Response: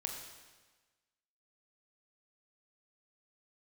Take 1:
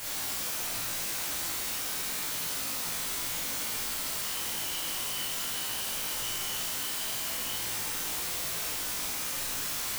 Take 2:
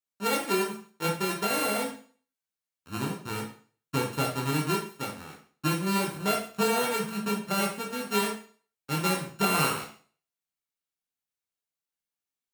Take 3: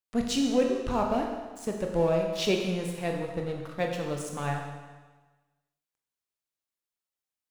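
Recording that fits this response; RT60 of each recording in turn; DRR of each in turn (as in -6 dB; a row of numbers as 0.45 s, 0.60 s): 3; 1.0 s, 0.45 s, 1.3 s; -7.0 dB, -1.5 dB, 1.5 dB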